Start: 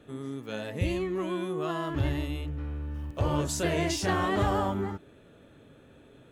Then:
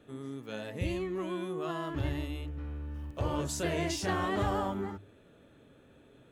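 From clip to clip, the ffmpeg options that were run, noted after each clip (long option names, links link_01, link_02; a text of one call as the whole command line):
ffmpeg -i in.wav -af "bandreject=frequency=50:width_type=h:width=6,bandreject=frequency=100:width_type=h:width=6,bandreject=frequency=150:width_type=h:width=6,volume=-4dB" out.wav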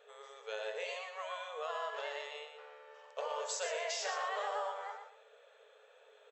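ffmpeg -i in.wav -af "afftfilt=real='re*between(b*sr/4096,410,8000)':imag='im*between(b*sr/4096,410,8000)':win_size=4096:overlap=0.75,acompressor=threshold=-36dB:ratio=6,aecho=1:1:119|238|357:0.447|0.107|0.0257,volume=1dB" out.wav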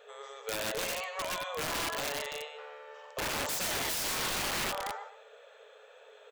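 ffmpeg -i in.wav -af "aeval=exprs='(mod(56.2*val(0)+1,2)-1)/56.2':channel_layout=same,volume=7dB" out.wav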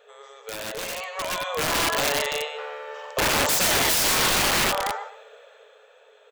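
ffmpeg -i in.wav -af "dynaudnorm=framelen=220:gausssize=13:maxgain=12dB" out.wav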